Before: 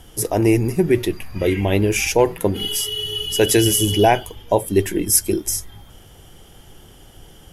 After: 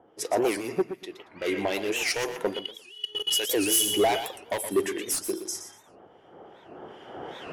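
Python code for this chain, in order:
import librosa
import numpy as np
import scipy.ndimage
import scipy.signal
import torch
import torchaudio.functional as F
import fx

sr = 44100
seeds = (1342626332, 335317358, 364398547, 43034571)

y = fx.recorder_agc(x, sr, target_db=-9.5, rise_db_per_s=10.0, max_gain_db=30)
y = scipy.signal.sosfilt(scipy.signal.butter(2, 420.0, 'highpass', fs=sr, output='sos'), y)
y = fx.env_lowpass(y, sr, base_hz=790.0, full_db=-16.0)
y = fx.auto_swell(y, sr, attack_ms=578.0, at=(0.81, 1.36), fade=0.02)
y = fx.level_steps(y, sr, step_db=22, at=(2.59, 3.69))
y = fx.band_shelf(y, sr, hz=2400.0, db=-10.5, octaves=1.1, at=(5.12, 5.55))
y = np.clip(y, -10.0 ** (-17.0 / 20.0), 10.0 ** (-17.0 / 20.0))
y = fx.harmonic_tremolo(y, sr, hz=2.5, depth_pct=70, crossover_hz=1700.0)
y = fx.echo_feedback(y, sr, ms=120, feedback_pct=23, wet_db=-10.0)
y = fx.record_warp(y, sr, rpm=78.0, depth_cents=250.0)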